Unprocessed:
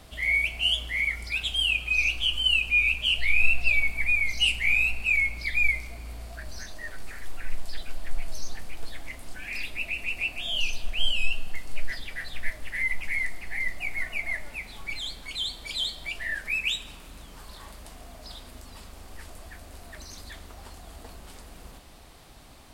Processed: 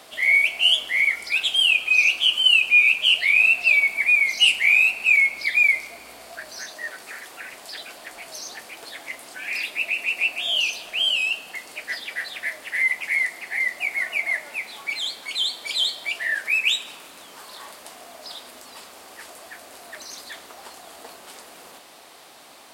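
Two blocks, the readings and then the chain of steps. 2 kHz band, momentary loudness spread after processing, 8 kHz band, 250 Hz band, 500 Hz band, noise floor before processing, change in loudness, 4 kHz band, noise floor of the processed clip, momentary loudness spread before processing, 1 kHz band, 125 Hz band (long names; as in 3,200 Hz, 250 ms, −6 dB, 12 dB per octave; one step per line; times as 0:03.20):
+7.0 dB, 22 LU, +7.0 dB, can't be measured, +6.0 dB, −47 dBFS, +7.0 dB, +7.0 dB, −46 dBFS, 21 LU, +7.0 dB, below −20 dB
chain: high-pass filter 410 Hz 12 dB per octave
level +7 dB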